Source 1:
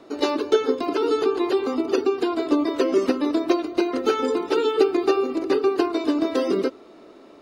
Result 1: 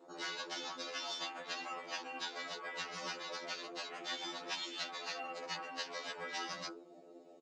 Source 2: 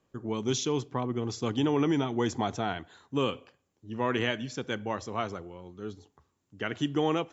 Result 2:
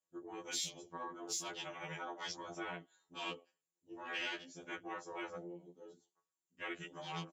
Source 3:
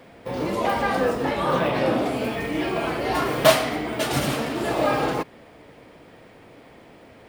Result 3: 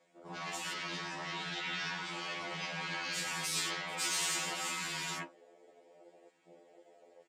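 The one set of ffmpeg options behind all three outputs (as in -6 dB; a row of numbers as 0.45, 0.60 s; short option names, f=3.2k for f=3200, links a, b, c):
-af "asoftclip=type=tanh:threshold=-12.5dB,highpass=f=500:p=1,flanger=delay=9.9:depth=9.6:regen=68:speed=0.43:shape=triangular,lowpass=f=7.4k:t=q:w=5,afftfilt=real='re*lt(hypot(re,im),0.0501)':imag='im*lt(hypot(re,im),0.0501)':win_size=1024:overlap=0.75,aecho=1:1:6.2:0.97,afwtdn=0.00708,afftfilt=real='re*2*eq(mod(b,4),0)':imag='im*2*eq(mod(b,4),0)':win_size=2048:overlap=0.75"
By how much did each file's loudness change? -19.0, -13.0, -12.5 LU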